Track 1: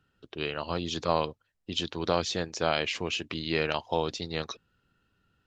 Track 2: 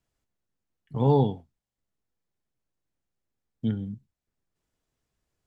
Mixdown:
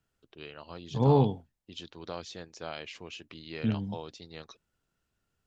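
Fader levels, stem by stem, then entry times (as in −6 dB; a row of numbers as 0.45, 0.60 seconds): −12.5, −1.5 decibels; 0.00, 0.00 seconds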